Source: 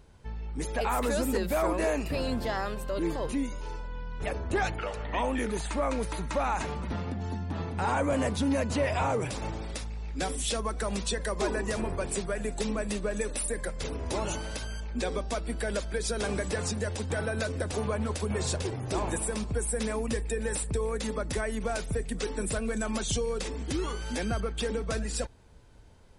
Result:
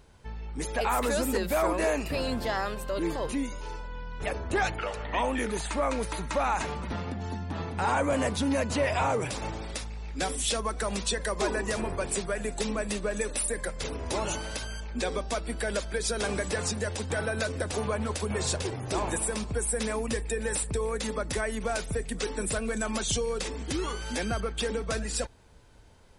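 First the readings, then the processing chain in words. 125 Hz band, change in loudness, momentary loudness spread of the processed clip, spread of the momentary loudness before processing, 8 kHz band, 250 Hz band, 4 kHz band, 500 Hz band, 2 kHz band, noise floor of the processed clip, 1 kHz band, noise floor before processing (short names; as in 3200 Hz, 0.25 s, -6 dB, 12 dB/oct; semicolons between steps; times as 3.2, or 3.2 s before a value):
-1.5 dB, +1.0 dB, 7 LU, 7 LU, +3.0 dB, -0.5 dB, +3.0 dB, +1.0 dB, +2.5 dB, -38 dBFS, +2.0 dB, -37 dBFS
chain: low shelf 470 Hz -4.5 dB; gain +3 dB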